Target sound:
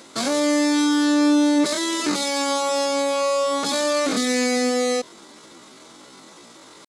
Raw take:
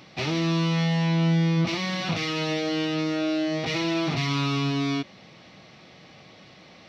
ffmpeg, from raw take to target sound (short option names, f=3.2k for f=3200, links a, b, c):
-af "asetrate=78577,aresample=44100,atempo=0.561231,volume=4.5dB"